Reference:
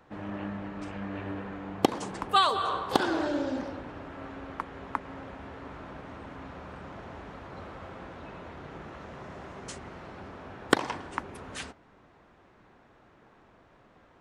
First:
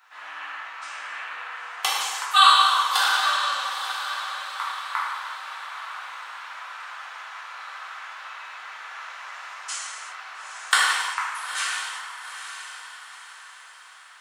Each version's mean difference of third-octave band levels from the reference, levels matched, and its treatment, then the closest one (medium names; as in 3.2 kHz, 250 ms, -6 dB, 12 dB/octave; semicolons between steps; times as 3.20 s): 17.0 dB: high-pass 1.1 kHz 24 dB/octave; treble shelf 6.4 kHz +5 dB; on a send: echo that smears into a reverb 890 ms, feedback 43%, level -9.5 dB; on the sum: gated-style reverb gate 420 ms falling, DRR -7.5 dB; trim +3.5 dB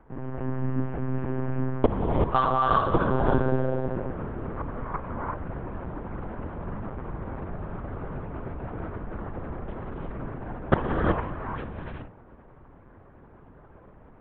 7.5 dB: low-pass 1.5 kHz 12 dB/octave; bass shelf 250 Hz +10.5 dB; gated-style reverb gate 400 ms rising, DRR -2 dB; monotone LPC vocoder at 8 kHz 130 Hz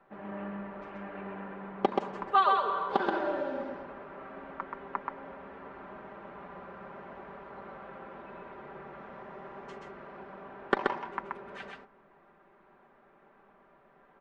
5.5 dB: low-pass 1.9 kHz 12 dB/octave; peaking EQ 64 Hz -14 dB 2.9 oct; comb 5.1 ms, depth 63%; on a send: delay 129 ms -3 dB; on the sum: trim -3 dB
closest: third